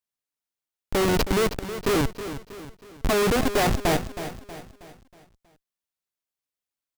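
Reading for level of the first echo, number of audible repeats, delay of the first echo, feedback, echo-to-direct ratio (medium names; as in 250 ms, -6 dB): -11.5 dB, 4, 319 ms, 45%, -10.5 dB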